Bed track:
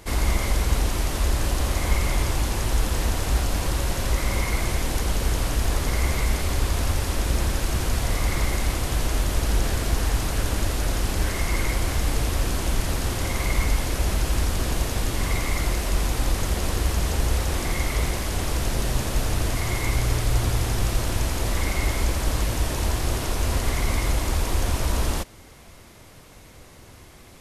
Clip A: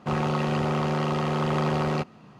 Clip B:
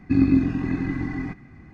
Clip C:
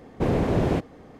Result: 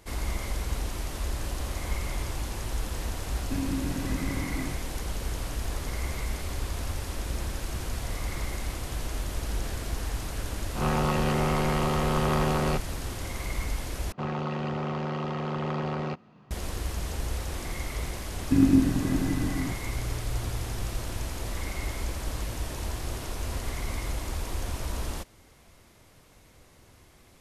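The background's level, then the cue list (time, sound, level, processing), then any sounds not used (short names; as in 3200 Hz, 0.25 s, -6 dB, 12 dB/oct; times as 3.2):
bed track -9 dB
3.41 add B -6 dB + compressor, threshold -21 dBFS
10.75 add A -2 dB + spectral swells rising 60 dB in 0.43 s
14.12 replace with A -5.5 dB + air absorption 86 m
18.41 add B -2 dB + LPF 1900 Hz
not used: C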